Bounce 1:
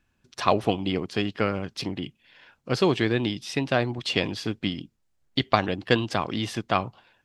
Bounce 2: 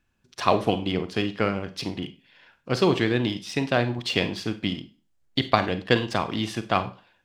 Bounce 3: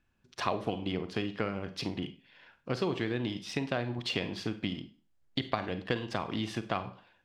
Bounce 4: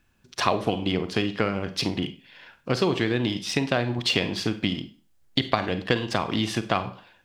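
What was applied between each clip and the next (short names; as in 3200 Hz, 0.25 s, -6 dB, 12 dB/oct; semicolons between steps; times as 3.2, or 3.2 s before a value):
Schroeder reverb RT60 0.35 s, combs from 33 ms, DRR 9.5 dB; in parallel at -8.5 dB: crossover distortion -35.5 dBFS; on the sum: gain -2 dB
high shelf 5800 Hz -8 dB; compressor 3:1, threshold -28 dBFS, peak gain reduction 11.5 dB; gain -2 dB
high shelf 4400 Hz +6.5 dB; gain +8 dB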